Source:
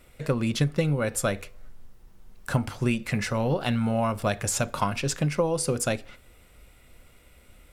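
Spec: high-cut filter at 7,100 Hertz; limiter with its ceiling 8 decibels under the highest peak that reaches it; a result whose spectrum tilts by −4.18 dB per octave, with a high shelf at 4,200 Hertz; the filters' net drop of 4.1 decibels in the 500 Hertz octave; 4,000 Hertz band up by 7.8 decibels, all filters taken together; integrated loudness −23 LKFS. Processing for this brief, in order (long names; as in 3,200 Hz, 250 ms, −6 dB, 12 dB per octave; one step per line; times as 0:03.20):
low-pass filter 7,100 Hz
parametric band 500 Hz −5 dB
parametric band 4,000 Hz +6.5 dB
high-shelf EQ 4,200 Hz +7 dB
level +5 dB
brickwall limiter −12 dBFS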